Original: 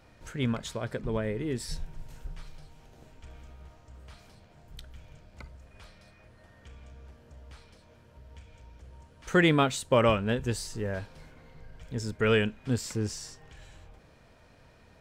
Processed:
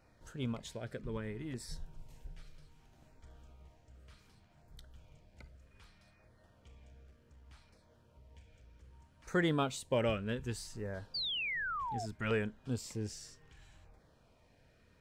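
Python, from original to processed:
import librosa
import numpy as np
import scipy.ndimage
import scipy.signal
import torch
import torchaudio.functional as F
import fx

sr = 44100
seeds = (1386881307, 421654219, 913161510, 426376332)

y = fx.halfwave_gain(x, sr, db=-3.0, at=(7.03, 7.47))
y = fx.spec_paint(y, sr, seeds[0], shape='fall', start_s=11.14, length_s=0.92, low_hz=640.0, high_hz=4800.0, level_db=-28.0)
y = fx.filter_lfo_notch(y, sr, shape='saw_down', hz=0.65, low_hz=400.0, high_hz=3400.0, q=2.3)
y = F.gain(torch.from_numpy(y), -8.5).numpy()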